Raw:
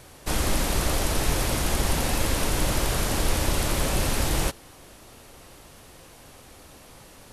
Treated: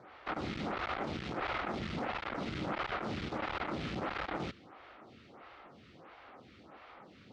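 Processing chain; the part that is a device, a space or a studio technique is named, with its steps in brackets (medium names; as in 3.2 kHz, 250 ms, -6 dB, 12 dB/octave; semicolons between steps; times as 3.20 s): vibe pedal into a guitar amplifier (lamp-driven phase shifter 1.5 Hz; valve stage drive 32 dB, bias 0.55; cabinet simulation 91–3900 Hz, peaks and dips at 210 Hz +5 dB, 330 Hz +3 dB, 770 Hz +5 dB, 1.3 kHz +9 dB, 2.1 kHz +5 dB); trim -2 dB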